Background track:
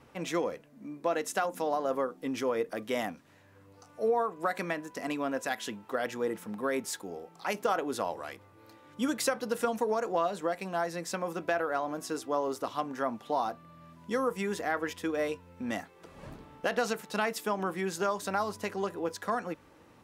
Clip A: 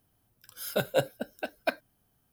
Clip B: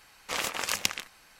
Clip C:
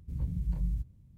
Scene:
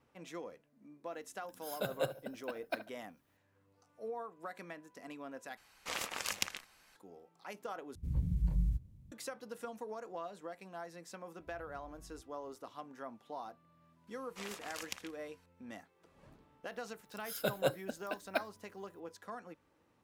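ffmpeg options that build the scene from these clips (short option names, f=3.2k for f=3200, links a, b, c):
-filter_complex "[1:a]asplit=2[a][b];[2:a]asplit=2[c][d];[3:a]asplit=2[e][f];[0:a]volume=-14.5dB[g];[a]asplit=2[h][i];[i]adelay=72,lowpass=f=1.7k:p=1,volume=-12dB,asplit=2[j][k];[k]adelay=72,lowpass=f=1.7k:p=1,volume=0.38,asplit=2[l][m];[m]adelay=72,lowpass=f=1.7k:p=1,volume=0.38,asplit=2[n][o];[o]adelay=72,lowpass=f=1.7k:p=1,volume=0.38[p];[h][j][l][n][p]amix=inputs=5:normalize=0[q];[f]acompressor=threshold=-37dB:ratio=6:attack=3.2:release=140:knee=1:detection=peak[r];[g]asplit=3[s][t][u];[s]atrim=end=5.574[v];[c]atrim=end=1.39,asetpts=PTS-STARTPTS,volume=-8dB[w];[t]atrim=start=6.956:end=7.954[x];[e]atrim=end=1.17,asetpts=PTS-STARTPTS,volume=-0.5dB[y];[u]atrim=start=9.116[z];[q]atrim=end=2.32,asetpts=PTS-STARTPTS,volume=-9.5dB,afade=t=in:d=0.004:c=hsin,afade=t=out:st=2.316:d=0.004:c=hsin,adelay=1050[aa];[r]atrim=end=1.17,asetpts=PTS-STARTPTS,volume=-17dB,afade=t=in:d=0.004:c=hsin,afade=t=out:st=1.166:d=0.004:c=hsin,adelay=11390[ab];[d]atrim=end=1.39,asetpts=PTS-STARTPTS,volume=-16dB,afade=t=in:d=0.004:c=hsin,afade=t=out:st=1.386:d=0.004:c=hsin,adelay=14070[ac];[b]atrim=end=2.32,asetpts=PTS-STARTPTS,volume=-6dB,afade=t=in:d=0.004:c=hsin,afade=t=out:st=2.316:d=0.004:c=hsin,adelay=735588S[ad];[v][w]acrossfade=d=0.004:c1=hsin:c2=hsin[ae];[ae][x]acrossfade=d=0.004:c1=hsin:c2=hsin[af];[af][y]acrossfade=d=0.004:c1=hsin:c2=hsin[ag];[ag][z]acrossfade=d=0.004:c1=hsin:c2=hsin[ah];[ah][aa][ab][ac][ad]amix=inputs=5:normalize=0"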